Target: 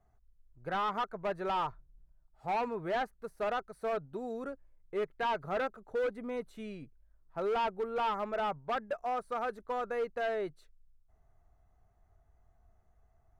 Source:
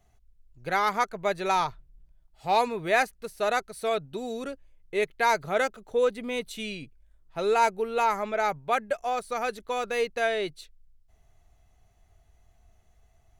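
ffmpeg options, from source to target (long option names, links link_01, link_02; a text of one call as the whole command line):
ffmpeg -i in.wav -filter_complex "[0:a]highshelf=frequency=2000:width_type=q:width=1.5:gain=-12,volume=23dB,asoftclip=hard,volume=-23dB,acrossover=split=3800[link_01][link_02];[link_02]acompressor=threshold=-55dB:ratio=4:attack=1:release=60[link_03];[link_01][link_03]amix=inputs=2:normalize=0,volume=-5.5dB" out.wav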